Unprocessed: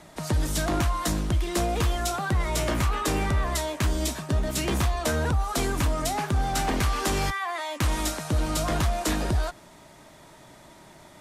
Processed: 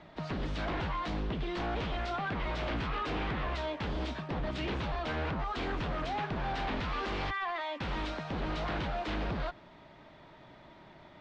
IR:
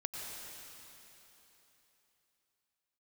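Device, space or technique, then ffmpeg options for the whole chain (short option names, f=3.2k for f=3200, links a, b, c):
synthesiser wavefolder: -af "aeval=exprs='0.0596*(abs(mod(val(0)/0.0596+3,4)-2)-1)':c=same,lowpass=f=3.8k:w=0.5412,lowpass=f=3.8k:w=1.3066,volume=-4dB"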